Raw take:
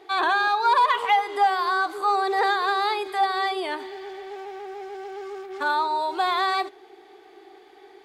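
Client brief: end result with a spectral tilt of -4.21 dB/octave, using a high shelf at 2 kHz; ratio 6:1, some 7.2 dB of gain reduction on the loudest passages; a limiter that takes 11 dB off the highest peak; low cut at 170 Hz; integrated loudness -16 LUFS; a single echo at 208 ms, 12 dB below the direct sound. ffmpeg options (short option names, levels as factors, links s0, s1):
-af "highpass=170,highshelf=f=2000:g=-5,acompressor=threshold=0.0631:ratio=6,alimiter=level_in=1.5:limit=0.0631:level=0:latency=1,volume=0.668,aecho=1:1:208:0.251,volume=8.91"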